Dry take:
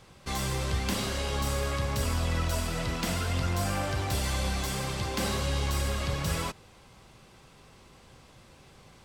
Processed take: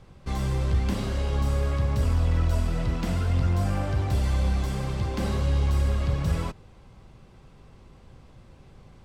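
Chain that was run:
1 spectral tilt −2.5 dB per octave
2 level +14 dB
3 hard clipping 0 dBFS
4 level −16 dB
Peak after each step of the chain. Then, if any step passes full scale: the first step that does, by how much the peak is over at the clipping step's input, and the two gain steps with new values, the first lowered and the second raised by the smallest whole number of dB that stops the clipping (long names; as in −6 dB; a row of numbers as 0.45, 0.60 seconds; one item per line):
−10.5, +3.5, 0.0, −16.0 dBFS
step 2, 3.5 dB
step 2 +10 dB, step 4 −12 dB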